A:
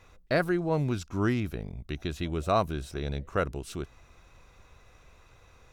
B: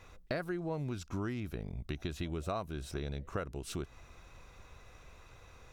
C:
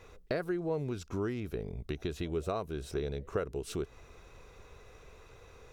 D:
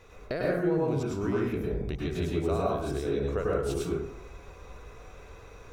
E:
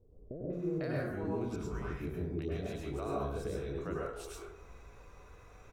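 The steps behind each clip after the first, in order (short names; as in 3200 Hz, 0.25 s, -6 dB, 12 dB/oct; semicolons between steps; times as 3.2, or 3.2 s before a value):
compressor 6:1, threshold -35 dBFS, peak gain reduction 14.5 dB; gain +1 dB
bell 430 Hz +10.5 dB 0.46 oct
plate-style reverb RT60 0.72 s, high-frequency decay 0.4×, pre-delay 90 ms, DRR -5 dB
three bands offset in time lows, mids, highs 0.5/0.53 s, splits 490/3500 Hz; gain -6.5 dB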